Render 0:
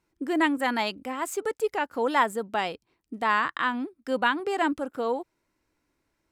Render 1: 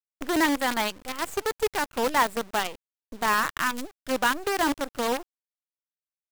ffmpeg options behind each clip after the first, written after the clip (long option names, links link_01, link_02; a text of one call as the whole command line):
ffmpeg -i in.wav -af "acrusher=bits=5:dc=4:mix=0:aa=0.000001" out.wav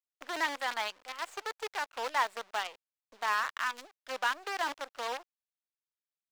ffmpeg -i in.wav -filter_complex "[0:a]acrossover=split=530 6500:gain=0.0708 1 0.224[link_01][link_02][link_03];[link_01][link_02][link_03]amix=inputs=3:normalize=0,volume=-6dB" out.wav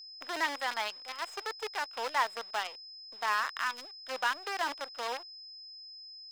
ffmpeg -i in.wav -af "aeval=exprs='val(0)+0.00501*sin(2*PI*5100*n/s)':channel_layout=same" out.wav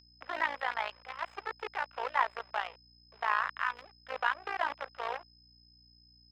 ffmpeg -i in.wav -filter_complex "[0:a]acrossover=split=420 3000:gain=0.224 1 0.0794[link_01][link_02][link_03];[link_01][link_02][link_03]amix=inputs=3:normalize=0,tremolo=f=57:d=0.824,aeval=exprs='val(0)+0.000355*(sin(2*PI*60*n/s)+sin(2*PI*2*60*n/s)/2+sin(2*PI*3*60*n/s)/3+sin(2*PI*4*60*n/s)/4+sin(2*PI*5*60*n/s)/5)':channel_layout=same,volume=4.5dB" out.wav